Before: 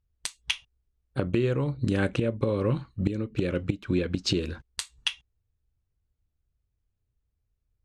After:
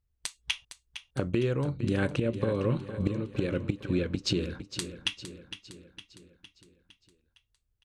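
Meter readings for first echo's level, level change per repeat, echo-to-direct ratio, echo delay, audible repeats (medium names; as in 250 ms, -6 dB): -11.5 dB, -5.5 dB, -10.0 dB, 459 ms, 5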